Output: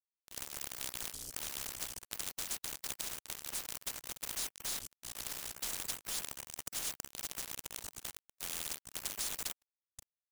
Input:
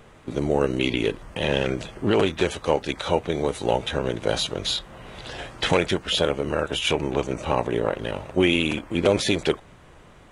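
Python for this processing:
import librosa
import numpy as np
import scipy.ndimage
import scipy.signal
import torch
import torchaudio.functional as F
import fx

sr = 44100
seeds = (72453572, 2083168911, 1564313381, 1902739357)

y = scipy.signal.sosfilt(scipy.signal.cheby2(4, 70, [130.0, 1600.0], 'bandstop', fs=sr, output='sos'), x)
y = np.sign(y) * np.maximum(np.abs(y) - 10.0 ** (-49.5 / 20.0), 0.0)
y = fx.spectral_comp(y, sr, ratio=4.0)
y = y * librosa.db_to_amplitude(7.0)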